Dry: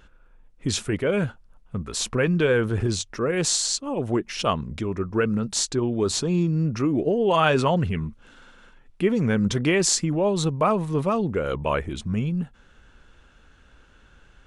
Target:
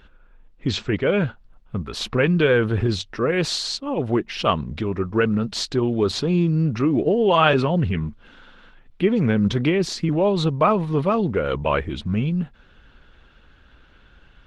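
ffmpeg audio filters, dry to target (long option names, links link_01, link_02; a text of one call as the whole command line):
ffmpeg -i in.wav -filter_complex "[0:a]highshelf=frequency=5600:width_type=q:width=1.5:gain=-11.5,asettb=1/sr,asplit=3[link_01][link_02][link_03];[link_01]atrim=end=7.534[link_04];[link_02]atrim=start=7.53:end=10.09,asetpts=PTS-STARTPTS,afade=type=in:duration=0.004:curve=qsin,afade=type=out:start_time=2.556:duration=0.004:curve=qsin,acrossover=split=470[link_05][link_06];[link_06]acompressor=threshold=-28dB:ratio=8[link_07];[link_05][link_07]amix=inputs=2:normalize=0[link_08];[link_03]atrim=start=10.086[link_09];[link_04][link_08]acrossfade=duration=0.004:curve1=hsin:curve2=qsin[link_10];[link_10][link_09]acrossfade=duration=0.004:curve1=qsin:curve2=hsin,volume=3dB" -ar 48000 -c:a libopus -b:a 20k out.opus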